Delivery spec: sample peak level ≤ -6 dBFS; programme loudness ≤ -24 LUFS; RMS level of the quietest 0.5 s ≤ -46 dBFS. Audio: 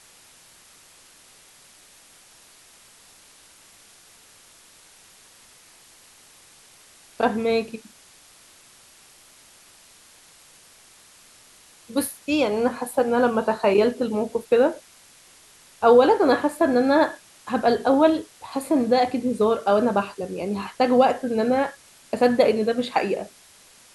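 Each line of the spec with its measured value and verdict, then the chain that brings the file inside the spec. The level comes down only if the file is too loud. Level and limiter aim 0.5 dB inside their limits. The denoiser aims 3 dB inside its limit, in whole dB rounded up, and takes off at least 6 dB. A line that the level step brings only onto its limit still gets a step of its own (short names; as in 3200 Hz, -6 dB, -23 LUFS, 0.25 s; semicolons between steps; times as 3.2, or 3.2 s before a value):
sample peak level -4.0 dBFS: fail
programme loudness -21.5 LUFS: fail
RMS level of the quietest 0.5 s -52 dBFS: OK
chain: gain -3 dB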